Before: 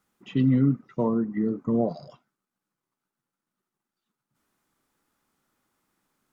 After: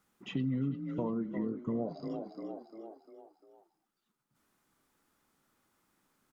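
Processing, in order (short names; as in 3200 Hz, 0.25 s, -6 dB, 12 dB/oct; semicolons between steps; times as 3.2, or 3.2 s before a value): on a send: frequency-shifting echo 0.349 s, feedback 47%, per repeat +35 Hz, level -12 dB; on the sum: compressor 2.5:1, threshold -36 dBFS, peak gain reduction 12.5 dB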